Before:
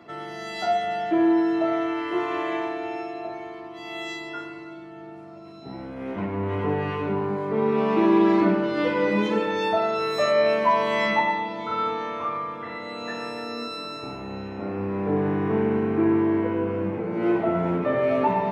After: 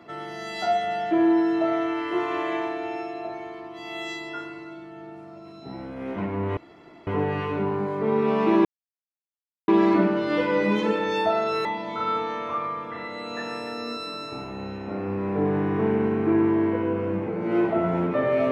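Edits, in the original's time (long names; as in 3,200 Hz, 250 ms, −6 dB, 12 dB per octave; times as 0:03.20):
0:06.57: splice in room tone 0.50 s
0:08.15: splice in silence 1.03 s
0:10.12–0:11.36: remove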